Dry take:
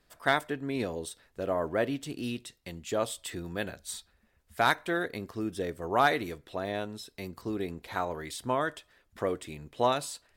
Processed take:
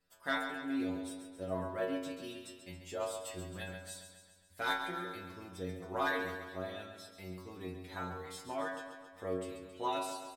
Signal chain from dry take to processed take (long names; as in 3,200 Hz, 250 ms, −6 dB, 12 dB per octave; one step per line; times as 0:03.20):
stiff-string resonator 90 Hz, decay 0.61 s, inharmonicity 0.002
repeating echo 136 ms, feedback 58%, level −9 dB
level +3.5 dB